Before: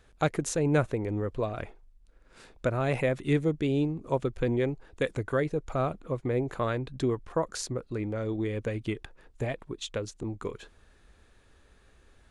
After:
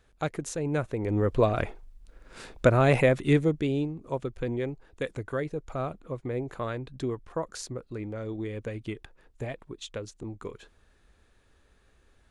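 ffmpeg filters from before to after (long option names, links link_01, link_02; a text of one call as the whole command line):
ffmpeg -i in.wav -af "volume=8dB,afade=type=in:start_time=0.89:duration=0.47:silence=0.251189,afade=type=out:start_time=2.66:duration=1.24:silence=0.266073" out.wav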